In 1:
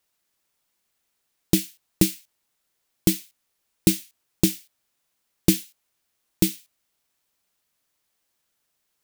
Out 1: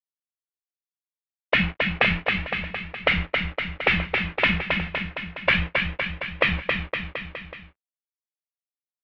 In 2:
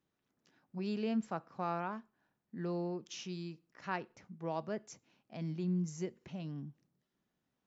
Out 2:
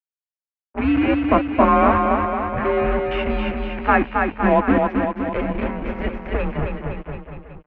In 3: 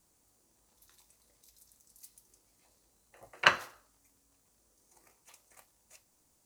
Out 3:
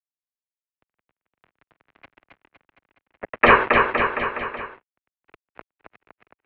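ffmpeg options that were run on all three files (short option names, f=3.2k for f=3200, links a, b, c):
-filter_complex "[0:a]bandreject=f=50:t=h:w=6,bandreject=f=100:t=h:w=6,bandreject=f=150:t=h:w=6,bandreject=f=200:t=h:w=6,bandreject=f=250:t=h:w=6,bandreject=f=300:t=h:w=6,afftfilt=real='re*lt(hypot(re,im),0.112)':imag='im*lt(hypot(re,im),0.112)':win_size=1024:overlap=0.75,flanger=delay=1.3:depth=1.3:regen=35:speed=0.33:shape=sinusoidal,aeval=exprs='val(0)+0.000224*sin(2*PI*440*n/s)':c=same,acrusher=bits=7:mix=0:aa=0.5,apsyclip=29.5dB,asplit=2[a][b];[b]aecho=0:1:270|513|731.7|928.5|1106:0.631|0.398|0.251|0.158|0.1[c];[a][c]amix=inputs=2:normalize=0,highpass=f=170:t=q:w=0.5412,highpass=f=170:t=q:w=1.307,lowpass=f=2.6k:t=q:w=0.5176,lowpass=f=2.6k:t=q:w=0.7071,lowpass=f=2.6k:t=q:w=1.932,afreqshift=-130,volume=-2dB"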